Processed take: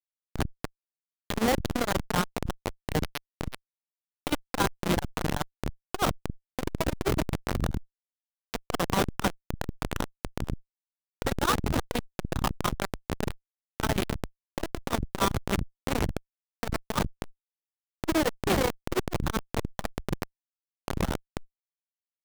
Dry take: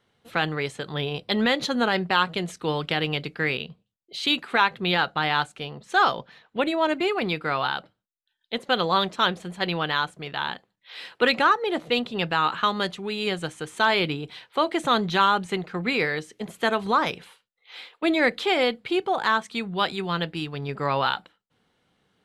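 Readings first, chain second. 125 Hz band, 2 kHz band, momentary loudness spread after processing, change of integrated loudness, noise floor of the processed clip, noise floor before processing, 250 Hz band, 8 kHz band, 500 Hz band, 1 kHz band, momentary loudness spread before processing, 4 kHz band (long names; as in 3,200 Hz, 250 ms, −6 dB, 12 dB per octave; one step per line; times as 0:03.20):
+1.5 dB, −11.0 dB, 13 LU, −6.5 dB, below −85 dBFS, −77 dBFS, −3.5 dB, +7.0 dB, −6.5 dB, −9.0 dB, 10 LU, −10.5 dB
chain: repeating echo 278 ms, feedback 22%, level −8 dB
comparator with hysteresis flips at −19 dBFS
saturating transformer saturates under 190 Hz
level +5 dB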